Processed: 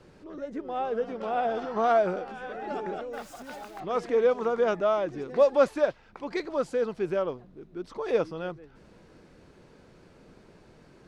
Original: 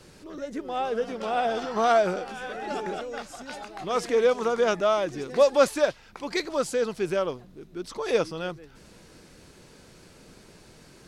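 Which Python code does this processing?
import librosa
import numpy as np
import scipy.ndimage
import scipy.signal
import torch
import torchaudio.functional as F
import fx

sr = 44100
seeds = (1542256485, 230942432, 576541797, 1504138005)

y = fx.crossing_spikes(x, sr, level_db=-30.0, at=(3.13, 3.8))
y = fx.lowpass(y, sr, hz=1200.0, slope=6)
y = fx.low_shelf(y, sr, hz=240.0, db=-3.5)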